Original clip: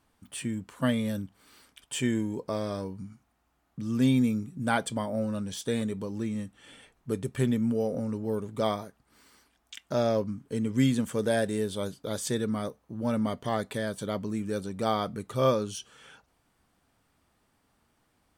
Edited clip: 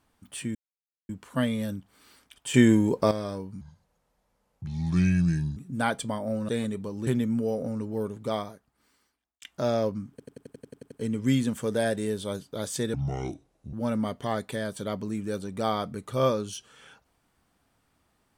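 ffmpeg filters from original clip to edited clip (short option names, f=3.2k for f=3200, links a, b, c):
-filter_complex "[0:a]asplit=20[a][b][c][d][e][f][g][h][i][j][k][l][m][n][o][p][q][r][s][t];[a]atrim=end=0.55,asetpts=PTS-STARTPTS,afade=t=out:st=0.546:d=0.004:c=hsin,apad=pad_dur=0.54[u];[b]atrim=start=0.55:end=2.002,asetpts=PTS-STARTPTS,afade=t=in:d=0.004:c=hsin[v];[c]atrim=start=1.998:end=2.572,asetpts=PTS-STARTPTS,volume=9.5dB[w];[d]atrim=start=2.568:end=3.074[x];[e]atrim=start=3.07:end=4.44,asetpts=PTS-STARTPTS,asetrate=30870,aresample=44100[y];[f]atrim=start=4.436:end=5.362[z];[g]atrim=start=5.658:end=6.242[aa];[h]atrim=start=7.388:end=9.74,asetpts=PTS-STARTPTS,afade=t=out:st=0.982:d=1.37[ab];[i]atrim=start=9.74:end=10.522,asetpts=PTS-STARTPTS,afade=t=in:d=0.004:c=hsin[ac];[j]atrim=start=10.428:end=10.522[ad];[k]atrim=start=10.428:end=10.522[ae];[l]atrim=start=10.428:end=10.522[af];[m]atrim=start=10.428:end=10.522[ag];[n]atrim=start=10.428:end=10.522[ah];[o]atrim=start=10.428:end=10.522[ai];[p]atrim=start=10.428:end=10.522[aj];[q]atrim=start=10.428:end=10.522[ak];[r]atrim=start=10.428:end=12.454[al];[s]atrim=start=12.45:end=12.95,asetpts=PTS-STARTPTS,asetrate=27783,aresample=44100[am];[t]atrim=start=12.946[an];[u][v]concat=n=2:v=0:a=1[ao];[ao][w]acrossfade=d=0.004:c1=hsin:c2=hsin[ap];[ap][x]acrossfade=d=0.004:c1=hsin:c2=hsin[aq];[aq][y]acrossfade=d=0.004:c1=hsin:c2=hsin[ar];[ar][z]acrossfade=d=0.004:c1=hsin:c2=hsin[as];[as][aa]acrossfade=d=0.004:c1=hsin:c2=hsin[at];[ab][ac]concat=n=2:v=0:a=1[au];[at][au]acrossfade=d=0.004:c1=hsin:c2=hsin[av];[av][ad]acrossfade=d=0.004:c1=hsin:c2=hsin[aw];[aw][ae]acrossfade=d=0.004:c1=hsin:c2=hsin[ax];[ax][af]acrossfade=d=0.004:c1=hsin:c2=hsin[ay];[ay][ag]acrossfade=d=0.004:c1=hsin:c2=hsin[az];[az][ah]acrossfade=d=0.004:c1=hsin:c2=hsin[ba];[ba][ai]acrossfade=d=0.004:c1=hsin:c2=hsin[bb];[bb][aj]acrossfade=d=0.004:c1=hsin:c2=hsin[bc];[bc][ak]acrossfade=d=0.004:c1=hsin:c2=hsin[bd];[bd][al]acrossfade=d=0.004:c1=hsin:c2=hsin[be];[be][am]acrossfade=d=0.004:c1=hsin:c2=hsin[bf];[bf][an]acrossfade=d=0.004:c1=hsin:c2=hsin"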